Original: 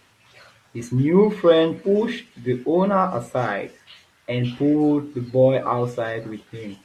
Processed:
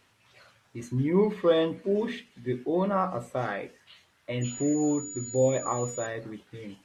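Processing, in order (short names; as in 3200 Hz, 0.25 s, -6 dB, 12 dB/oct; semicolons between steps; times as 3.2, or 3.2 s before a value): 4.41–6.05 whine 6900 Hz -30 dBFS; gain -7.5 dB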